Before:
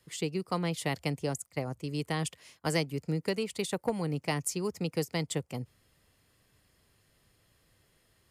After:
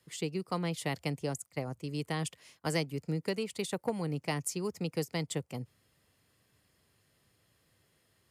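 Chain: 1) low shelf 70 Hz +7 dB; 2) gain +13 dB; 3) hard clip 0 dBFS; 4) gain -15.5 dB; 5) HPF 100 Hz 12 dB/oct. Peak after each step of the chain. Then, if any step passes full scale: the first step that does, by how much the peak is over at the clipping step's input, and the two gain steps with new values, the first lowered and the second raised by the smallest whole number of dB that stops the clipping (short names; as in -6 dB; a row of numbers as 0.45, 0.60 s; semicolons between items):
-16.0, -3.0, -3.0, -18.5, -19.0 dBFS; no overload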